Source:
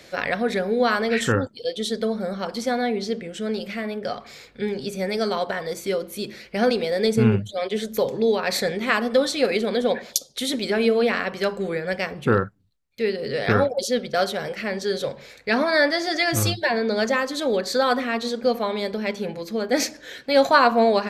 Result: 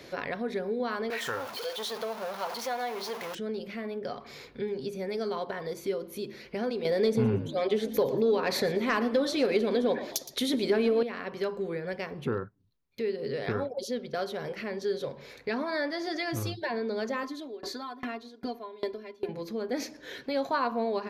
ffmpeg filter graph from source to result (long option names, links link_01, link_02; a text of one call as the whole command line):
ffmpeg -i in.wav -filter_complex "[0:a]asettb=1/sr,asplit=3[link_01][link_02][link_03];[link_01]atrim=end=1.104[link_04];[link_02]atrim=start=1.1:end=3.35,asetpts=PTS-STARTPTS,afade=type=in:duration=0.004:curve=qsin,afade=type=out:start_time=2.246:duration=0.004:curve=qsin,aeval=exprs='val(0)+0.5*0.0596*sgn(val(0))':channel_layout=same,highpass=frequency=130:poles=1,lowshelf=frequency=470:width_type=q:width=1.5:gain=-13[link_05];[link_03]atrim=start=3.346[link_06];[link_04][link_05]acrossfade=duration=0.004:curve1=hsin:curve2=qsin[link_07];[link_07][link_06]acrossfade=duration=0.004:curve1=qsin:curve2=hsin,asettb=1/sr,asplit=3[link_08][link_09][link_10];[link_08]atrim=end=6.854[link_11];[link_09]atrim=start=6.85:end=11.03,asetpts=PTS-STARTPTS,afade=type=in:duration=0.004:curve=qsin,afade=type=out:start_time=4.176:duration=0.004:curve=qsin,aeval=exprs='0.841*sin(PI/2*2.24*val(0)/0.841)':channel_layout=same,asplit=4[link_12][link_13][link_14][link_15];[link_13]adelay=116,afreqshift=53,volume=-16dB[link_16];[link_14]adelay=232,afreqshift=106,volume=-25.6dB[link_17];[link_15]adelay=348,afreqshift=159,volume=-35.3dB[link_18];[link_12][link_16][link_17][link_18]amix=inputs=4:normalize=0,atrim=end_sample=184338[link_19];[link_10]atrim=start=11.026[link_20];[link_11][link_19]acrossfade=duration=0.004:curve1=hsin:curve2=qsin[link_21];[link_21][link_20]acrossfade=duration=0.004:curve1=qsin:curve2=hsin,asettb=1/sr,asplit=3[link_22][link_23][link_24];[link_22]atrim=end=17.234[link_25];[link_23]atrim=start=17.23:end=19.29,asetpts=PTS-STARTPTS,afade=type=in:duration=0.004:curve=qsin,afade=type=out:start_time=2.056:duration=0.004:curve=qsin,aecho=1:1:2.9:0.92,atrim=end_sample=90846,aeval=exprs='val(0)*pow(10,-30*if(lt(mod(2.5*n/s,1),2*abs(2.5)/1000),1-mod(2.5*n/s,1)/(2*abs(2.5)/1000),(mod(2.5*n/s,1)-2*abs(2.5)/1000)/(1-2*abs(2.5)/1000))/20)':channel_layout=same[link_26];[link_24]atrim=start=19.286[link_27];[link_25][link_26]acrossfade=duration=0.004:curve1=hsin:curve2=qsin[link_28];[link_28][link_27]acrossfade=duration=0.004:curve1=qsin:curve2=hsin,equalizer=frequency=200:width_type=o:width=1.6:gain=8.5,acompressor=threshold=-35dB:ratio=2,equalizer=frequency=200:width_type=o:width=0.33:gain=-8,equalizer=frequency=400:width_type=o:width=0.33:gain=5,equalizer=frequency=1000:width_type=o:width=0.33:gain=6,equalizer=frequency=8000:width_type=o:width=0.33:gain=-9,volume=-3dB" out.wav